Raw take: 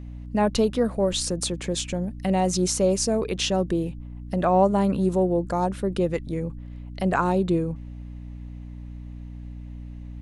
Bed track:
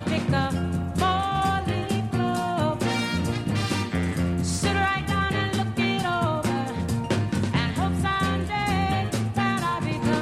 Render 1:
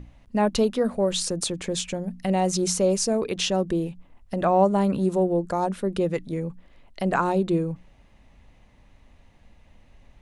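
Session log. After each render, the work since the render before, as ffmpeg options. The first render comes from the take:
ffmpeg -i in.wav -af "bandreject=frequency=60:width_type=h:width=6,bandreject=frequency=120:width_type=h:width=6,bandreject=frequency=180:width_type=h:width=6,bandreject=frequency=240:width_type=h:width=6,bandreject=frequency=300:width_type=h:width=6" out.wav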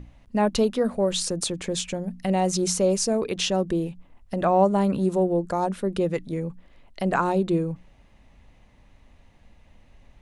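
ffmpeg -i in.wav -af anull out.wav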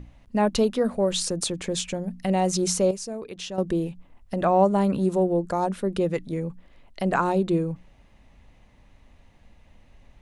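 ffmpeg -i in.wav -filter_complex "[0:a]asplit=3[link_01][link_02][link_03];[link_01]atrim=end=2.912[link_04];[link_02]atrim=start=2.908:end=3.582,asetpts=PTS-STARTPTS,volume=-10dB[link_05];[link_03]atrim=start=3.578[link_06];[link_04][link_05]acrossfade=duration=0.004:curve1=hsin:curve2=hsin[link_07];[link_07][link_06]acrossfade=duration=0.004:curve1=hsin:curve2=hsin" out.wav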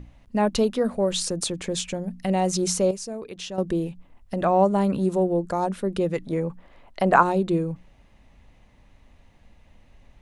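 ffmpeg -i in.wav -filter_complex "[0:a]asettb=1/sr,asplit=3[link_01][link_02][link_03];[link_01]atrim=end=6.224[link_04];[link_02]atrim=start=6.22:end=7.23,asetpts=PTS-STARTPTS,afade=type=in:duration=0.004:curve=qsin,afade=type=out:start_time=1.006:duration=0.004:curve=qsin,equalizer=frequency=890:width=0.56:gain=8.5[link_05];[link_03]atrim=start=7.226[link_06];[link_04][link_05]acrossfade=duration=0.004:curve1=hsin:curve2=qsin[link_07];[link_07][link_06]acrossfade=duration=0.004:curve1=qsin:curve2=hsin" out.wav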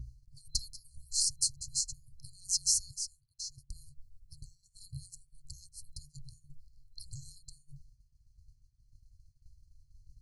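ffmpeg -i in.wav -af "afftfilt=real='re*(1-between(b*sr/4096,140,4100))':imag='im*(1-between(b*sr/4096,140,4100))':win_size=4096:overlap=0.75,agate=range=-33dB:threshold=-46dB:ratio=3:detection=peak" out.wav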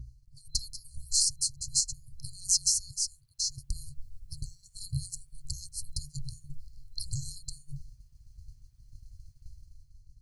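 ffmpeg -i in.wav -af "dynaudnorm=framelen=120:gausssize=11:maxgain=11dB,alimiter=limit=-13dB:level=0:latency=1:release=490" out.wav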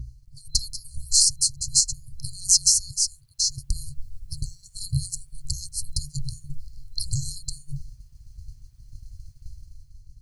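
ffmpeg -i in.wav -af "volume=8dB" out.wav

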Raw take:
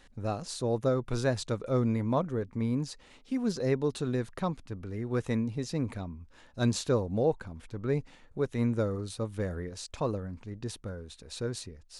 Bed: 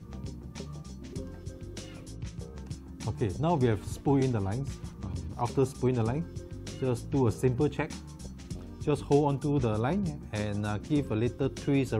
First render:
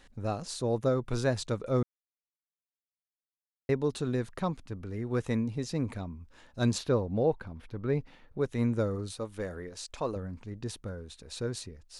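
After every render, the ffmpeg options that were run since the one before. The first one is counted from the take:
ffmpeg -i in.wav -filter_complex "[0:a]asettb=1/sr,asplit=3[link_01][link_02][link_03];[link_01]atrim=end=6.784[link_04];[link_02]atrim=start=6.78:end=8.41,asetpts=PTS-STARTPTS,afade=type=in:duration=0.004:curve=qsin,afade=type=out:start_time=1.626:duration=0.004:curve=qsin,equalizer=frequency=7700:width=1.5:gain=-13.5[link_05];[link_03]atrim=start=8.406[link_06];[link_04][link_05]acrossfade=duration=0.004:curve1=hsin:curve2=qsin[link_07];[link_07][link_06]acrossfade=duration=0.004:curve1=qsin:curve2=hsin,asettb=1/sr,asplit=3[link_08][link_09][link_10];[link_08]atrim=end=9.124[link_11];[link_09]atrim=start=9.12:end=10.16,asetpts=PTS-STARTPTS,afade=type=in:duration=0.004:curve=qsin,afade=type=out:start_time=1.036:duration=0.004:curve=qsin,equalizer=frequency=110:width_type=o:width=2.2:gain=-8.5[link_12];[link_10]atrim=start=10.156[link_13];[link_11][link_12]acrossfade=duration=0.004:curve1=hsin:curve2=qsin[link_14];[link_14][link_13]acrossfade=duration=0.004:curve1=qsin:curve2=hsin,asplit=3[link_15][link_16][link_17];[link_15]atrim=end=1.83,asetpts=PTS-STARTPTS,afade=type=out:start_time=1.826:duration=0.004:curve=hsin[link_18];[link_16]atrim=start=1.83:end=3.69,asetpts=PTS-STARTPTS,volume=0[link_19];[link_17]atrim=start=3.69,asetpts=PTS-STARTPTS,afade=type=in:duration=0.004:curve=hsin[link_20];[link_18][link_19][link_20]concat=n=3:v=0:a=1" out.wav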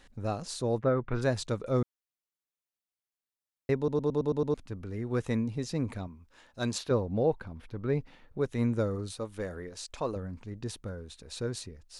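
ffmpeg -i in.wav -filter_complex "[0:a]asplit=3[link_01][link_02][link_03];[link_01]afade=type=out:start_time=0.79:duration=0.02[link_04];[link_02]lowpass=frequency=1900:width_type=q:width=1.8,afade=type=in:start_time=0.79:duration=0.02,afade=type=out:start_time=1.21:duration=0.02[link_05];[link_03]afade=type=in:start_time=1.21:duration=0.02[link_06];[link_04][link_05][link_06]amix=inputs=3:normalize=0,asettb=1/sr,asplit=3[link_07][link_08][link_09];[link_07]atrim=end=6.074[link_10];[link_08]atrim=start=6.07:end=6.91,asetpts=PTS-STARTPTS,afade=type=in:duration=0.004:curve=qsin,afade=type=out:start_time=0.836:duration=0.004:curve=qsin,lowshelf=frequency=280:gain=-8.5[link_11];[link_09]atrim=start=6.906[link_12];[link_10][link_11]acrossfade=duration=0.004:curve1=hsin:curve2=qsin[link_13];[link_13][link_12]acrossfade=duration=0.004:curve1=qsin:curve2=hsin,asplit=8[link_14][link_15][link_16][link_17][link_18][link_19][link_20][link_21];[link_14]atrim=end=3.882[link_22];[link_15]atrim=start=3.768:end=3.882[link_23];[link_16]atrim=start=3.768:end=3.882[link_24];[link_17]atrim=start=3.768:end=3.882[link_25];[link_18]atrim=start=3.768:end=3.882[link_26];[link_19]atrim=start=3.768:end=3.882[link_27];[link_20]atrim=start=3.768:end=3.882[link_28];[link_21]atrim=start=4.538[link_29];[link_22][link_23]acrossfade=duration=0.004:curve1=hsin:curve2=hsin[link_30];[link_30][link_24]acrossfade=duration=0.004:curve1=hsin:curve2=hsin[link_31];[link_31][link_25]acrossfade=duration=0.004:curve1=hsin:curve2=hsin[link_32];[link_32][link_26]acrossfade=duration=0.004:curve1=hsin:curve2=hsin[link_33];[link_33][link_27]acrossfade=duration=0.004:curve1=hsin:curve2=hsin[link_34];[link_34][link_28]acrossfade=duration=0.004:curve1=hsin:curve2=hsin[link_35];[link_35][link_29]acrossfade=duration=0.004:curve1=hsin:curve2=hsin" out.wav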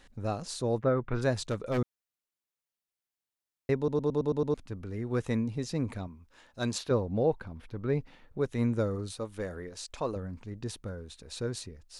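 ffmpeg -i in.wav -filter_complex "[0:a]asplit=3[link_01][link_02][link_03];[link_01]afade=type=out:start_time=1.34:duration=0.02[link_04];[link_02]aeval=exprs='0.0668*(abs(mod(val(0)/0.0668+3,4)-2)-1)':channel_layout=same,afade=type=in:start_time=1.34:duration=0.02,afade=type=out:start_time=1.77:duration=0.02[link_05];[link_03]afade=type=in:start_time=1.77:duration=0.02[link_06];[link_04][link_05][link_06]amix=inputs=3:normalize=0" out.wav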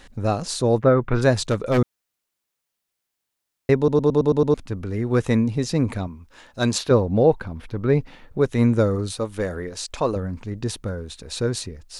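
ffmpeg -i in.wav -af "volume=10.5dB" out.wav

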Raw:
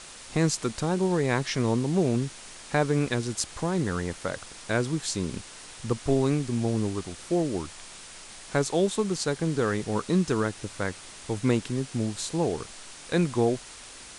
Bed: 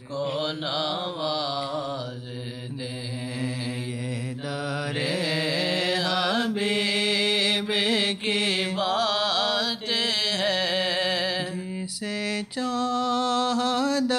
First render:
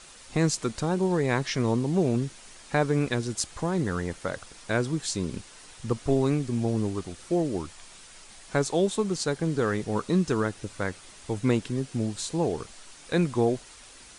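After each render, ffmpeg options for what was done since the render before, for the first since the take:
ffmpeg -i in.wav -af "afftdn=noise_reduction=6:noise_floor=-45" out.wav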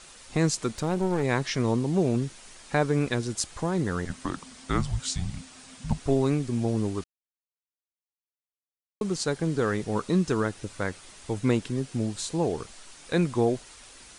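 ffmpeg -i in.wav -filter_complex "[0:a]asettb=1/sr,asplit=3[link_01][link_02][link_03];[link_01]atrim=end=0.684[link_04];[link_02]atrim=start=0.68:end=1.23,asetpts=PTS-STARTPTS,afade=type=in:duration=0.004:curve=qsin,afade=type=out:start_time=0.546:duration=0.004:curve=qsin,aeval=exprs='clip(val(0),-1,0.0316)':channel_layout=same[link_05];[link_03]atrim=start=1.226[link_06];[link_04][link_05]acrossfade=duration=0.004:curve1=hsin:curve2=qsin[link_07];[link_07][link_06]acrossfade=duration=0.004:curve1=qsin:curve2=hsin,asettb=1/sr,asplit=3[link_08][link_09][link_10];[link_08]atrim=end=4.054[link_11];[link_09]atrim=start=4.05:end=6,asetpts=PTS-STARTPTS,afade=type=in:duration=0.004:curve=qsin,afade=type=out:start_time=1.946:duration=0.004:curve=qsin,afreqshift=-270[link_12];[link_10]atrim=start=5.996[link_13];[link_11][link_12]acrossfade=duration=0.004:curve1=hsin:curve2=qsin[link_14];[link_14][link_13]acrossfade=duration=0.004:curve1=qsin:curve2=hsin,asplit=3[link_15][link_16][link_17];[link_15]atrim=end=7.04,asetpts=PTS-STARTPTS,afade=type=out:start_time=7.036:duration=0.004:curve=hsin[link_18];[link_16]atrim=start=7.04:end=9.01,asetpts=PTS-STARTPTS,volume=0[link_19];[link_17]atrim=start=9.01,asetpts=PTS-STARTPTS,afade=type=in:duration=0.004:curve=hsin[link_20];[link_18][link_19][link_20]concat=n=3:v=0:a=1" out.wav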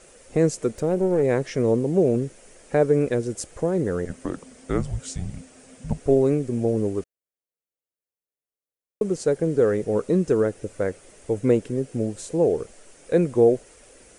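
ffmpeg -i in.wav -af "equalizer=frequency=500:width_type=o:width=1:gain=12,equalizer=frequency=1000:width_type=o:width=1:gain=-8,equalizer=frequency=4000:width_type=o:width=1:gain=-11" out.wav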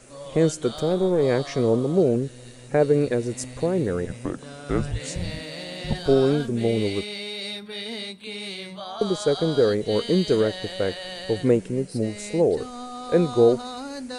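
ffmpeg -i in.wav -i bed.wav -filter_complex "[1:a]volume=-10.5dB[link_01];[0:a][link_01]amix=inputs=2:normalize=0" out.wav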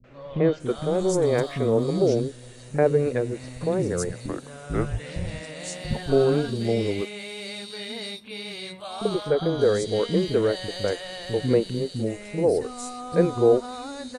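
ffmpeg -i in.wav -filter_complex "[0:a]acrossover=split=260|3400[link_01][link_02][link_03];[link_02]adelay=40[link_04];[link_03]adelay=600[link_05];[link_01][link_04][link_05]amix=inputs=3:normalize=0" out.wav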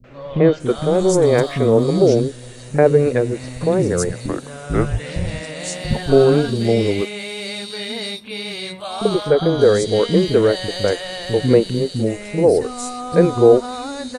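ffmpeg -i in.wav -af "volume=7.5dB,alimiter=limit=-1dB:level=0:latency=1" out.wav

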